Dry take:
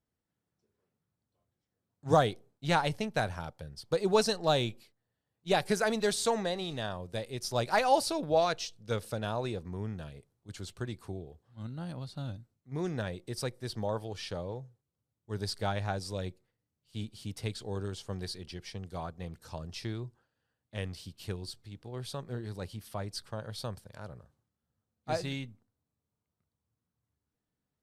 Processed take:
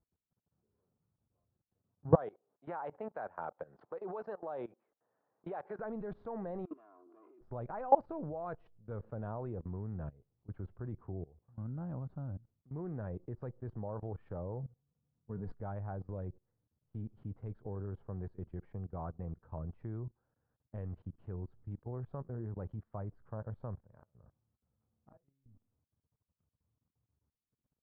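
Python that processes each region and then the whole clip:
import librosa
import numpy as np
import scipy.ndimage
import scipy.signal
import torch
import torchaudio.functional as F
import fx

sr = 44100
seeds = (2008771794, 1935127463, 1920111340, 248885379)

y = fx.chain(x, sr, fx.highpass(hz=500.0, slope=12),
    fx.band_squash(depth_pct=70), at=(2.15, 5.79))
y = fx.chain(y, sr, fx.lower_of_two(delay_ms=2.9),
    fx.over_compress(threshold_db=-48.0, ratio=-1.0),
    fx.cabinet(low_hz=300.0, low_slope=24, high_hz=2900.0, hz=(320.0, 530.0, 850.0, 1200.0, 1800.0, 2800.0), db=(9, -10, -6, 7, -9, 5)), at=(6.65, 7.41))
y = fx.chain(y, sr, fx.peak_eq(hz=140.0, db=12.5, octaves=0.52),
    fx.comb(ms=4.2, depth=0.54), at=(14.63, 15.62))
y = fx.chain(y, sr, fx.gate_flip(shuts_db=-32.0, range_db=-32),
    fx.doubler(ms=36.0, db=-8.5), at=(23.87, 25.46))
y = scipy.signal.sosfilt(scipy.signal.butter(4, 1300.0, 'lowpass', fs=sr, output='sos'), y)
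y = fx.low_shelf(y, sr, hz=140.0, db=6.5)
y = fx.level_steps(y, sr, step_db=21)
y = y * 10.0 ** (2.0 / 20.0)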